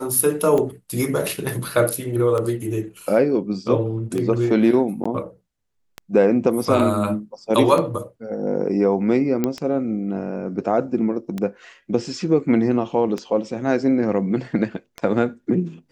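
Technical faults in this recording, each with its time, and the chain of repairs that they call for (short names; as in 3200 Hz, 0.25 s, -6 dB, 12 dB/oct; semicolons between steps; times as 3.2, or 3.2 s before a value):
tick 33 1/3 rpm -13 dBFS
5.04–5.05 gap 15 ms
9.44 pop -8 dBFS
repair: de-click; interpolate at 5.04, 15 ms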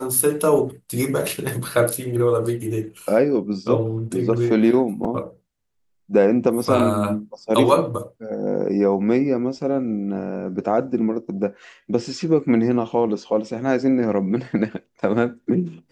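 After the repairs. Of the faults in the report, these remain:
none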